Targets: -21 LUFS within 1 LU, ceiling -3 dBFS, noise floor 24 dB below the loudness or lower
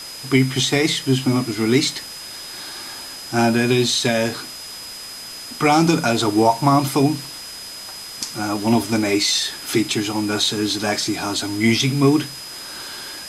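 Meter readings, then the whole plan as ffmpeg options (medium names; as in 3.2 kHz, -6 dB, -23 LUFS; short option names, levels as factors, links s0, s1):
steady tone 5 kHz; tone level -34 dBFS; noise floor -35 dBFS; noise floor target -43 dBFS; loudness -19.0 LUFS; peak level -3.0 dBFS; loudness target -21.0 LUFS
-> -af "bandreject=f=5000:w=30"
-af "afftdn=nr=8:nf=-35"
-af "volume=0.794"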